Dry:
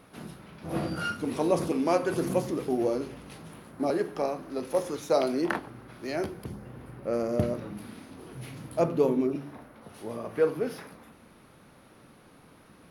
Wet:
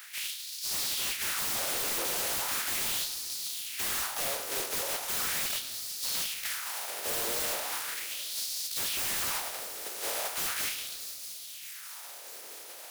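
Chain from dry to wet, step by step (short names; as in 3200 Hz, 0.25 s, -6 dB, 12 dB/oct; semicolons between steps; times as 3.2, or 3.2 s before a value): spectral contrast lowered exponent 0.15; notch 1100 Hz, Q 18; de-hum 55.68 Hz, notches 27; in parallel at +1.5 dB: compressor, threshold -42 dBFS, peak gain reduction 21.5 dB; on the sum: LFO high-pass sine 0.38 Hz 420–4700 Hz; wavefolder -27 dBFS; thin delay 0.632 s, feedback 74%, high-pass 4700 Hz, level -11 dB; on a send at -11 dB: reverb RT60 2.9 s, pre-delay 5 ms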